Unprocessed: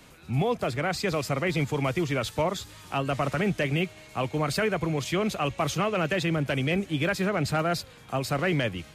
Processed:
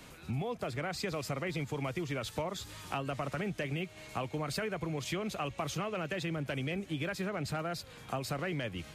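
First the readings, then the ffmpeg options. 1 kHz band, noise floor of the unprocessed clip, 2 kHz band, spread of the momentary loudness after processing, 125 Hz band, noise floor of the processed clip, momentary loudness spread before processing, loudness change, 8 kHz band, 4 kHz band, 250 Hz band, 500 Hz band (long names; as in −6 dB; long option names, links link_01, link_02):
−9.0 dB, −50 dBFS, −9.5 dB, 3 LU, −9.0 dB, −52 dBFS, 5 LU, −9.0 dB, −7.0 dB, −8.0 dB, −9.0 dB, −9.5 dB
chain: -af "acompressor=threshold=-33dB:ratio=6"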